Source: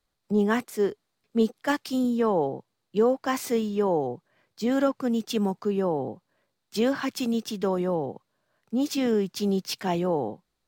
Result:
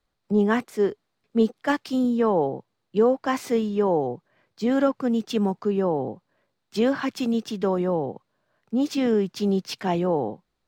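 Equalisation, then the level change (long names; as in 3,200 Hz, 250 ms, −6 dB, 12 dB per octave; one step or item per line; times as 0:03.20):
low-pass filter 3,600 Hz 6 dB per octave
+2.5 dB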